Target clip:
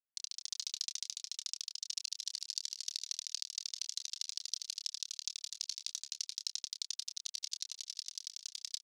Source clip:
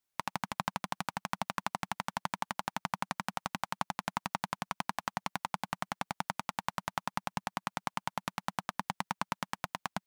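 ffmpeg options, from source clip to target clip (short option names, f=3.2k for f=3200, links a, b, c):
-filter_complex "[0:a]aeval=exprs='(mod(28.2*val(0)+1,2)-1)/28.2':c=same,crystalizer=i=10:c=0,asetrate=50274,aresample=44100,tremolo=f=43:d=0.75,aeval=exprs='(mod(8.41*val(0)+1,2)-1)/8.41':c=same,acrusher=bits=5:mix=0:aa=0.5,asuperpass=centerf=5000:order=4:qfactor=2,asplit=2[a][b];[b]adelay=28,volume=-8.5dB[c];[a][c]amix=inputs=2:normalize=0,asplit=4[d][e][f][g];[e]adelay=437,afreqshift=-43,volume=-14.5dB[h];[f]adelay=874,afreqshift=-86,volume=-24.7dB[i];[g]adelay=1311,afreqshift=-129,volume=-34.8dB[j];[d][h][i][j]amix=inputs=4:normalize=0,volume=4dB"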